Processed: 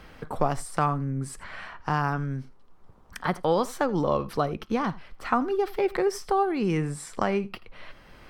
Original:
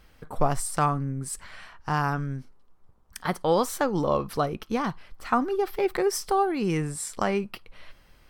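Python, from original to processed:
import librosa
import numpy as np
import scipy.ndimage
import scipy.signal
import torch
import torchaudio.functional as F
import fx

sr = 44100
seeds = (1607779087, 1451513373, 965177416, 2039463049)

y = fx.high_shelf(x, sr, hz=6500.0, db=-10.5)
y = y + 10.0 ** (-21.5 / 20.0) * np.pad(y, (int(82 * sr / 1000.0), 0))[:len(y)]
y = fx.band_squash(y, sr, depth_pct=40)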